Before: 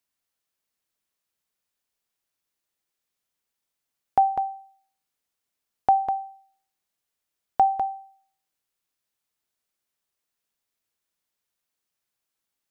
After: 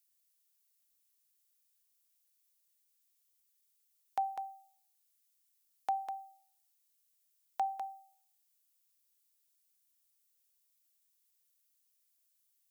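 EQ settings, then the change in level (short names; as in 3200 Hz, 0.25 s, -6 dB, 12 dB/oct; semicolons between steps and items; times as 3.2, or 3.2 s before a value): differentiator; +4.5 dB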